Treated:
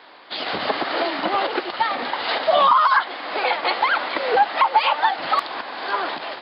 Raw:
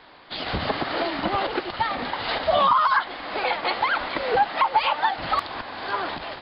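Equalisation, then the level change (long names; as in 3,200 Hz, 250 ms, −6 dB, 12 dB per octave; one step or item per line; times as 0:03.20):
high-pass filter 300 Hz 12 dB per octave
+3.5 dB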